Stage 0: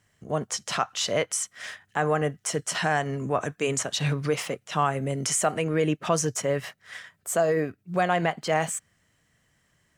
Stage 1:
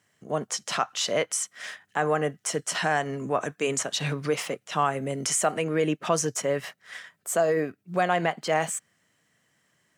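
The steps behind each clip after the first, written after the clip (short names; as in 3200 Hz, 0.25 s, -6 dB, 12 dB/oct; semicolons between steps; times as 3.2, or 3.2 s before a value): HPF 170 Hz 12 dB/oct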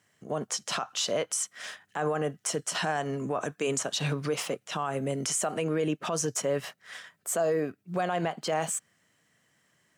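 dynamic EQ 2000 Hz, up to -6 dB, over -46 dBFS, Q 3.2; limiter -19.5 dBFS, peak gain reduction 9.5 dB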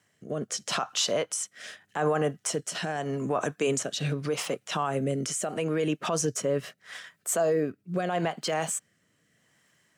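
rotary speaker horn 0.8 Hz; gain +3.5 dB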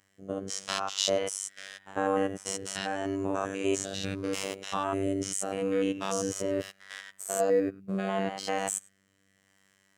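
stepped spectrum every 0.1 s; robotiser 97.1 Hz; gain +3 dB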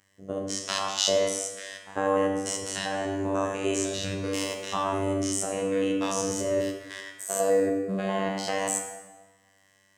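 reverb RT60 1.3 s, pre-delay 13 ms, DRR 3 dB; gain +1.5 dB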